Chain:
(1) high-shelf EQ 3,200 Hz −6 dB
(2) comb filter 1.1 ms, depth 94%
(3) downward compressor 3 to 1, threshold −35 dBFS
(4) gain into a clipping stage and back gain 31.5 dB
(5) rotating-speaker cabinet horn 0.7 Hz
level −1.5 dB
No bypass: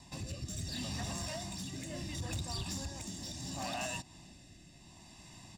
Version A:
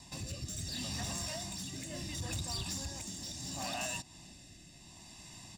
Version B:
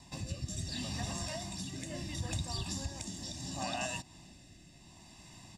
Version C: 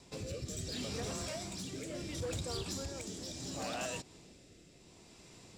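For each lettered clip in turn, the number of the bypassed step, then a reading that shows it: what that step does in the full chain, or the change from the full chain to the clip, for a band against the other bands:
1, 8 kHz band +4.5 dB
4, distortion level −13 dB
2, 500 Hz band +6.5 dB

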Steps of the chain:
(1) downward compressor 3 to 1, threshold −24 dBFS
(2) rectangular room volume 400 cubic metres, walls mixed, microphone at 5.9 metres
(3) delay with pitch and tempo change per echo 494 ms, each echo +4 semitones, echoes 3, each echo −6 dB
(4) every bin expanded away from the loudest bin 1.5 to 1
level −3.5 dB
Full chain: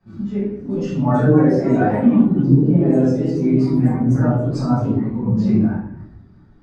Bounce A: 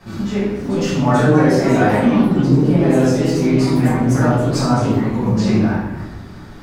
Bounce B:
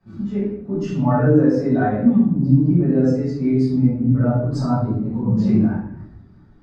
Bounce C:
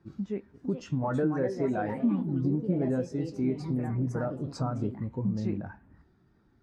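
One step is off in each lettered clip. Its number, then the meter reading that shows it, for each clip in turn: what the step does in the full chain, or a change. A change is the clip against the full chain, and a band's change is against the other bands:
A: 4, 2 kHz band +7.0 dB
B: 3, change in integrated loudness −1.5 LU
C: 2, change in momentary loudness spread −3 LU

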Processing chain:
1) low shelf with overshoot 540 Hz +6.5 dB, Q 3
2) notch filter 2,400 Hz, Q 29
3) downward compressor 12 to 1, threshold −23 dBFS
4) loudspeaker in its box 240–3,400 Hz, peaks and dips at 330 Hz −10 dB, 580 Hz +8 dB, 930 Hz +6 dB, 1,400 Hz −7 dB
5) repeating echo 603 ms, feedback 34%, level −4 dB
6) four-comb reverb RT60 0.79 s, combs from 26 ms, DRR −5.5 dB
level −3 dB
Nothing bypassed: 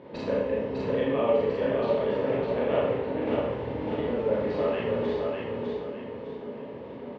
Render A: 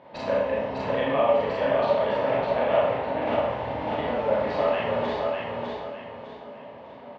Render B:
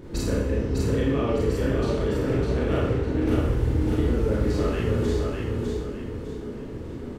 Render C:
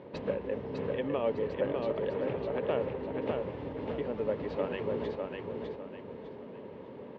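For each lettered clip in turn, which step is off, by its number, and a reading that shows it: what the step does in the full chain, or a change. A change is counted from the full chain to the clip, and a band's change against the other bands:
1, 250 Hz band −8.0 dB
4, change in momentary loudness spread −2 LU
6, echo-to-direct ratio 7.5 dB to −3.5 dB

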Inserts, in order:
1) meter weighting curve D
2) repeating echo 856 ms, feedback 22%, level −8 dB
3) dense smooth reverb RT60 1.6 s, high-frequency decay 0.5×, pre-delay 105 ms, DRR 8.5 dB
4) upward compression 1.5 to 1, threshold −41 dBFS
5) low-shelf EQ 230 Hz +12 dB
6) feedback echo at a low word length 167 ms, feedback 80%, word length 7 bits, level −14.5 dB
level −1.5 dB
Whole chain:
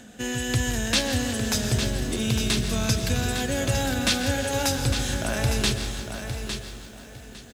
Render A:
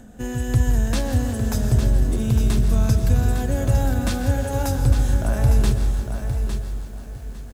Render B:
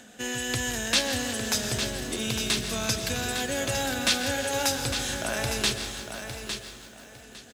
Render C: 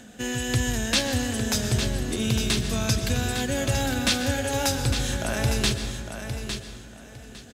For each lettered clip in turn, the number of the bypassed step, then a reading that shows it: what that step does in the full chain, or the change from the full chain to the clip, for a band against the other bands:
1, 4 kHz band −11.0 dB
5, 125 Hz band −9.0 dB
6, change in momentary loudness spread +1 LU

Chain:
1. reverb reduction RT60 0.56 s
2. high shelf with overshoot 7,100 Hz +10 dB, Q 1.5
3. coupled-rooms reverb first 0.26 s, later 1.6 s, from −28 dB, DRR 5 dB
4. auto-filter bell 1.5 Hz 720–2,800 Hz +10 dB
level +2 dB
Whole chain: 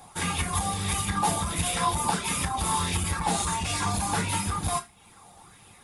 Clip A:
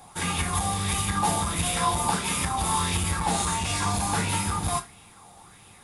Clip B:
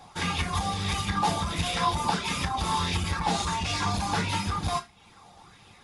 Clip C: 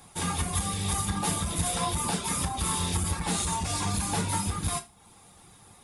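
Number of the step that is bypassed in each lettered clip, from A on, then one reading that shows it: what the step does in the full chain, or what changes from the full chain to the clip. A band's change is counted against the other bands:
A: 1, change in integrated loudness +1.5 LU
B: 2, 8 kHz band −8.0 dB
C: 4, 2 kHz band −4.0 dB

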